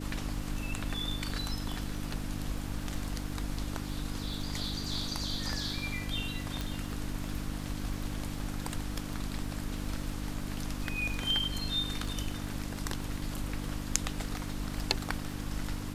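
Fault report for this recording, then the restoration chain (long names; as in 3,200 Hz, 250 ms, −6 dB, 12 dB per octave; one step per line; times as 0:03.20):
surface crackle 21 per second −39 dBFS
mains hum 50 Hz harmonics 6 −39 dBFS
0:06.61: click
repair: click removal
hum removal 50 Hz, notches 6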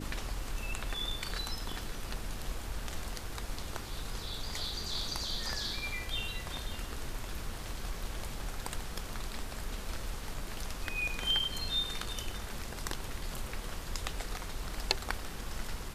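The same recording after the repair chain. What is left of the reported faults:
none of them is left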